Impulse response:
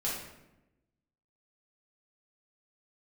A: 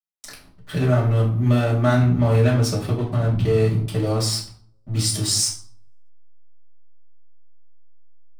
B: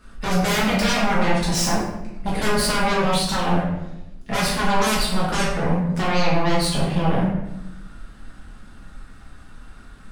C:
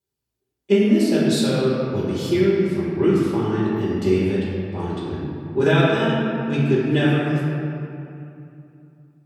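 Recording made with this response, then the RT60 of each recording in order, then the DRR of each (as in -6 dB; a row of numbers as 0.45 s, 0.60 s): B; 0.55 s, 0.95 s, 2.7 s; -6.0 dB, -7.0 dB, -9.0 dB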